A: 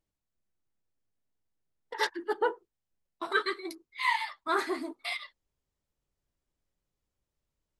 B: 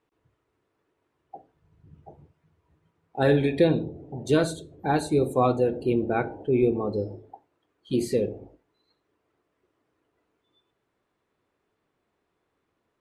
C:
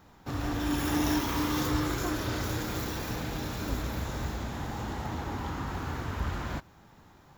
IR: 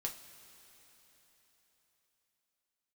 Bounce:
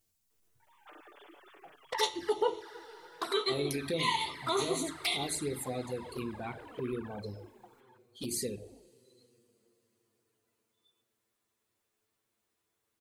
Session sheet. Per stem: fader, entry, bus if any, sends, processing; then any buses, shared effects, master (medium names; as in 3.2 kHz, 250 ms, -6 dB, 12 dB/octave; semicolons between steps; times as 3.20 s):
+2.0 dB, 0.00 s, bus A, send -3.5 dB, none
-10.0 dB, 0.30 s, bus A, send -9.5 dB, treble shelf 3.3 kHz +6.5 dB
-8.5 dB, 0.60 s, no bus, no send, formants replaced by sine waves; high-pass 340 Hz; compression 3:1, threshold -43 dBFS, peak gain reduction 15 dB; auto duck -9 dB, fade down 1.10 s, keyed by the first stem
bus A: 0.0 dB, treble shelf 4.7 kHz +9 dB; compression 20:1, threshold -33 dBFS, peak gain reduction 15 dB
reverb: on, pre-delay 3 ms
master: treble shelf 3.6 kHz +9 dB; touch-sensitive flanger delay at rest 9.1 ms, full sweep at -27 dBFS